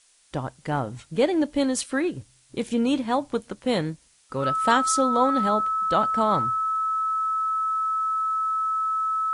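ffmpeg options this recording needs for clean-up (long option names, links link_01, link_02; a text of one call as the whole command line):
ffmpeg -i in.wav -af "bandreject=frequency=1300:width=30,agate=range=-21dB:threshold=-50dB" out.wav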